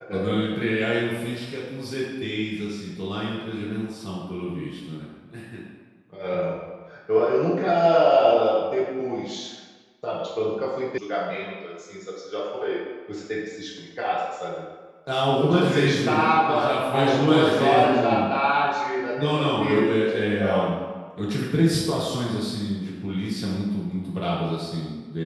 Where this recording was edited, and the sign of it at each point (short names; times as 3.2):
10.98 sound cut off